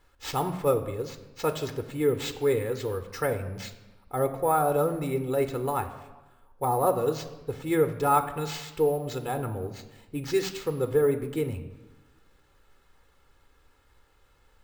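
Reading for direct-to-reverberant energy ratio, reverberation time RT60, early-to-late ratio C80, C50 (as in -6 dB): 8.0 dB, 1.1 s, 13.5 dB, 11.5 dB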